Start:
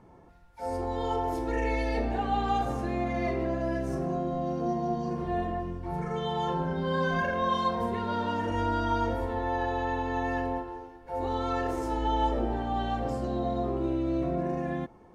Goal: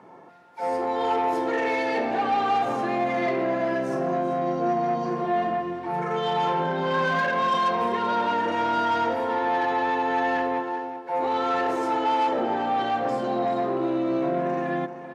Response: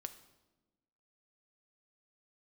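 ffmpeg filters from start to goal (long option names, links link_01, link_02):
-filter_complex "[0:a]asplit=2[link_01][link_02];[link_02]highpass=frequency=720:poles=1,volume=18dB,asoftclip=type=tanh:threshold=-15dB[link_03];[link_01][link_03]amix=inputs=2:normalize=0,lowpass=frequency=2400:poles=1,volume=-6dB,highpass=frequency=130:width=0.5412,highpass=frequency=130:width=1.3066,asplit=2[link_04][link_05];[link_05]aecho=0:1:387:0.251[link_06];[link_04][link_06]amix=inputs=2:normalize=0"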